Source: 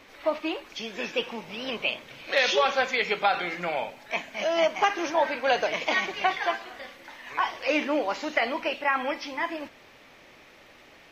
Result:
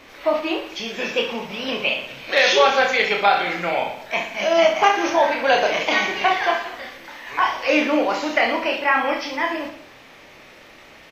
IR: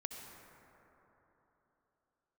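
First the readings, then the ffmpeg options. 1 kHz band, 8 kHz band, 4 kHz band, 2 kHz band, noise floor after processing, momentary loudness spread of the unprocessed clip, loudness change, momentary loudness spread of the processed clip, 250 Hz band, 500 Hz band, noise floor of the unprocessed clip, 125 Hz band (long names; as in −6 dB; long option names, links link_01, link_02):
+7.5 dB, can't be measured, +7.0 dB, +7.0 dB, −46 dBFS, 11 LU, +7.5 dB, 11 LU, +7.5 dB, +7.5 dB, −53 dBFS, +7.0 dB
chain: -af "aecho=1:1:30|67.5|114.4|173|246.2:0.631|0.398|0.251|0.158|0.1,volume=5dB"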